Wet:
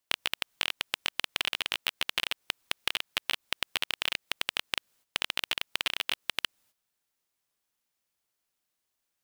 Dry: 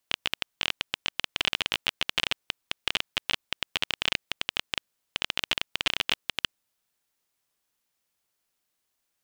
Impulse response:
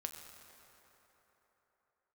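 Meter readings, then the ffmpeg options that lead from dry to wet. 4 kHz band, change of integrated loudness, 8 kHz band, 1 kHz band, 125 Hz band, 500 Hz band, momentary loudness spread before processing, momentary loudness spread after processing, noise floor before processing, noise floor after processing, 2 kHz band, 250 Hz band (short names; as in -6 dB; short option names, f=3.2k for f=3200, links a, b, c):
-2.5 dB, -2.0 dB, +0.5 dB, -1.5 dB, -8.5 dB, -3.5 dB, 6 LU, 4 LU, -80 dBFS, -83 dBFS, -1.5 dB, -6.5 dB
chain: -af "apsyclip=13.5dB,acompressor=threshold=-19dB:ratio=6,agate=range=-11dB:threshold=-58dB:ratio=16:detection=peak,volume=-6dB"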